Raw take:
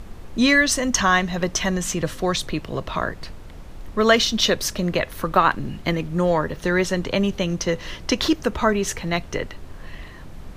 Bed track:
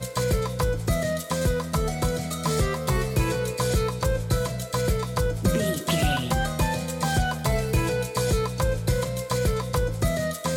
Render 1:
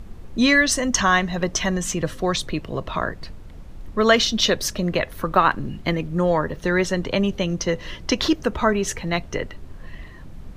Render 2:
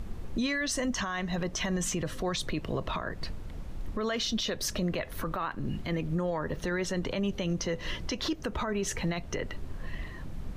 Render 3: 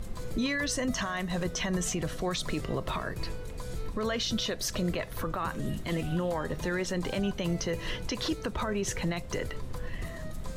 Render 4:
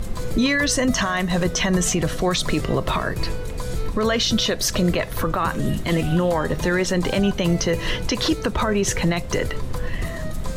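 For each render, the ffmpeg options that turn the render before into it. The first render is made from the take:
-af "afftdn=nr=6:nf=-39"
-af "acompressor=threshold=-25dB:ratio=5,alimiter=limit=-22.5dB:level=0:latency=1:release=20"
-filter_complex "[1:a]volume=-18dB[a];[0:a][a]amix=inputs=2:normalize=0"
-af "volume=10.5dB"

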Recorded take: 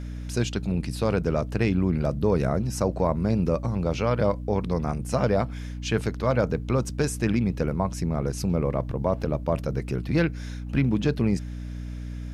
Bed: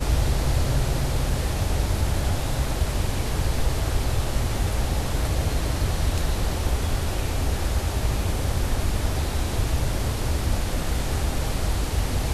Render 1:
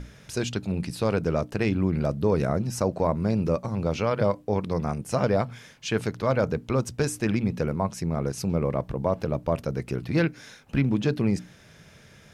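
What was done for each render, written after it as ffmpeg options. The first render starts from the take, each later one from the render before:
-af "bandreject=f=60:t=h:w=6,bandreject=f=120:t=h:w=6,bandreject=f=180:t=h:w=6,bandreject=f=240:t=h:w=6,bandreject=f=300:t=h:w=6"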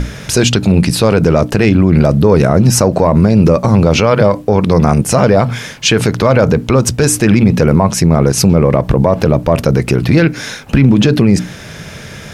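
-af "acontrast=82,alimiter=level_in=15dB:limit=-1dB:release=50:level=0:latency=1"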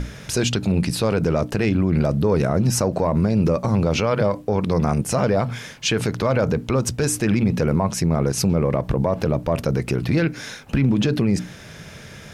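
-af "volume=-10dB"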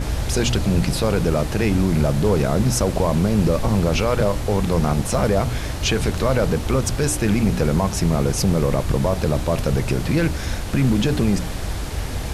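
-filter_complex "[1:a]volume=-2dB[a];[0:a][a]amix=inputs=2:normalize=0"

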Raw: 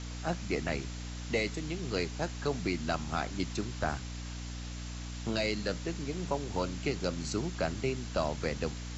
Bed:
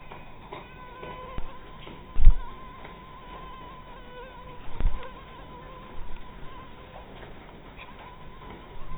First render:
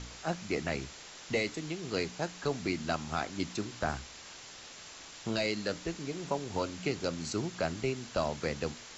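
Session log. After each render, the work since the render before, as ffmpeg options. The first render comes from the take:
-af "bandreject=f=60:t=h:w=4,bandreject=f=120:t=h:w=4,bandreject=f=180:t=h:w=4,bandreject=f=240:t=h:w=4,bandreject=f=300:t=h:w=4"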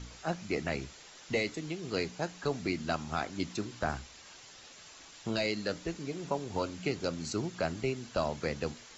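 -af "afftdn=nr=6:nf=-49"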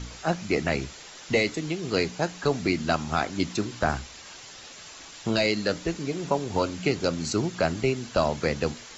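-af "volume=8dB"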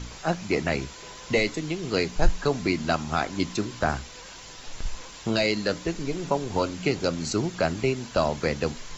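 -filter_complex "[1:a]volume=-7dB[a];[0:a][a]amix=inputs=2:normalize=0"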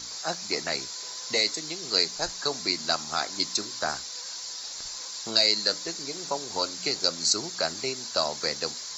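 -af "highpass=f=930:p=1,highshelf=f=3.6k:t=q:w=3:g=6.5"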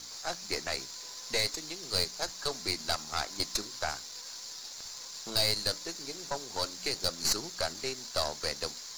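-af "aeval=exprs='sgn(val(0))*max(abs(val(0))-0.00355,0)':c=same,aeval=exprs='(tanh(10*val(0)+0.75)-tanh(0.75))/10':c=same"

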